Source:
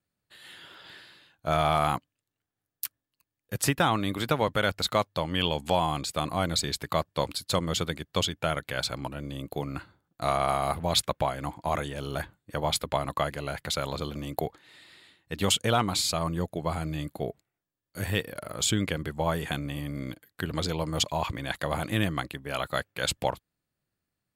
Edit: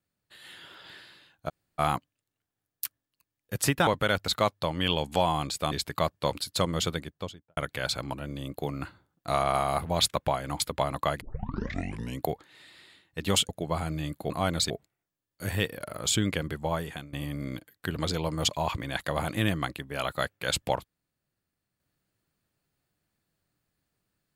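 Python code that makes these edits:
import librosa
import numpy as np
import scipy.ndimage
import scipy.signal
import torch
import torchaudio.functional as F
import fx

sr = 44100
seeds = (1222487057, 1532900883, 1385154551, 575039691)

y = fx.studio_fade_out(x, sr, start_s=7.78, length_s=0.73)
y = fx.edit(y, sr, fx.room_tone_fill(start_s=1.49, length_s=0.3, crossfade_s=0.02),
    fx.cut(start_s=3.87, length_s=0.54),
    fx.move(start_s=6.26, length_s=0.4, to_s=17.25),
    fx.cut(start_s=11.54, length_s=1.2),
    fx.tape_start(start_s=13.35, length_s=1.02),
    fx.cut(start_s=15.63, length_s=0.81),
    fx.fade_out_to(start_s=18.91, length_s=0.77, curve='qsin', floor_db=-18.0), tone=tone)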